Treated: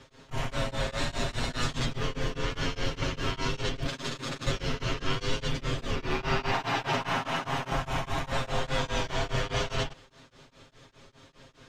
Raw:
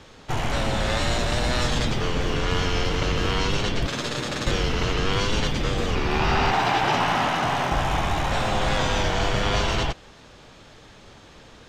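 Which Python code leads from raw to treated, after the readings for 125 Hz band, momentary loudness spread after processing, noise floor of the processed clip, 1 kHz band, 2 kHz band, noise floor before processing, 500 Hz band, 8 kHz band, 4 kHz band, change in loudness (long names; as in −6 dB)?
−6.5 dB, 4 LU, −59 dBFS, −9.0 dB, −7.0 dB, −48 dBFS, −7.0 dB, −7.0 dB, −7.0 dB, −7.5 dB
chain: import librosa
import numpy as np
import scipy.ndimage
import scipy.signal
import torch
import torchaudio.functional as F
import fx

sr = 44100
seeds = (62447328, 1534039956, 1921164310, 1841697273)

y = fx.notch(x, sr, hz=790.0, q=15.0)
y = y + 0.97 * np.pad(y, (int(7.5 * sr / 1000.0), 0))[:len(y)]
y = y * np.abs(np.cos(np.pi * 4.9 * np.arange(len(y)) / sr))
y = y * 10.0 ** (-7.0 / 20.0)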